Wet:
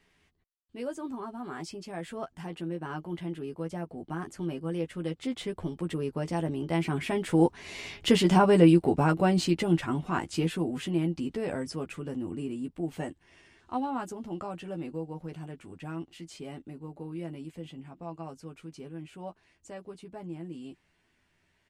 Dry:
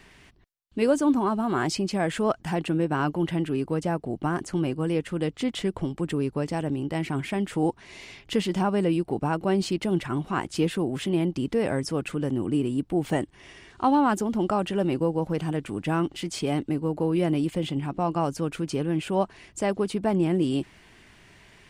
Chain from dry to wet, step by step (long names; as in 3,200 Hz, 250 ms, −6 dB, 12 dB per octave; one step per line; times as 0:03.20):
source passing by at 0:08.36, 11 m/s, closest 9.8 metres
double-tracking delay 12 ms −5 dB
level +3.5 dB